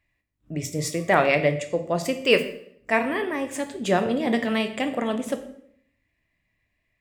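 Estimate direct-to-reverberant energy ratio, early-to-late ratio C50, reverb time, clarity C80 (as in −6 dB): 7.5 dB, 12.0 dB, 0.65 s, 14.0 dB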